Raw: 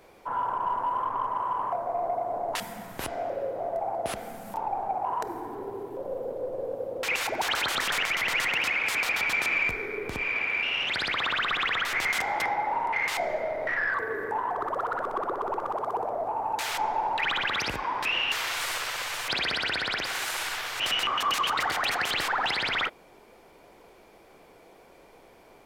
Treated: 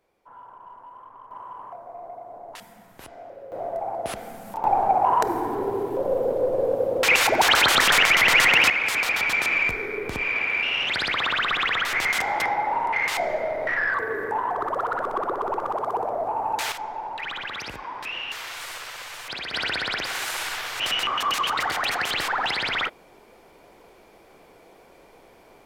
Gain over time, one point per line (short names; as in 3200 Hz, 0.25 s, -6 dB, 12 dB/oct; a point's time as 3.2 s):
-16.5 dB
from 1.31 s -10 dB
from 3.52 s +1 dB
from 4.64 s +10 dB
from 8.7 s +3.5 dB
from 16.72 s -5 dB
from 19.54 s +2 dB